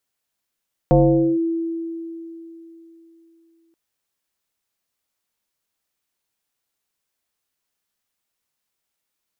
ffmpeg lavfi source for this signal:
-f lavfi -i "aevalsrc='0.355*pow(10,-3*t/3.41)*sin(2*PI*331*t+1.8*clip(1-t/0.47,0,1)*sin(2*PI*0.57*331*t))':d=2.83:s=44100"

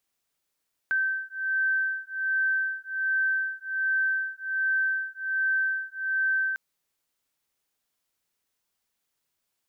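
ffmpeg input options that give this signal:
-f lavfi -i "aevalsrc='0.0422*(sin(2*PI*1550*t)+sin(2*PI*1551.3*t))':d=5.65:s=44100"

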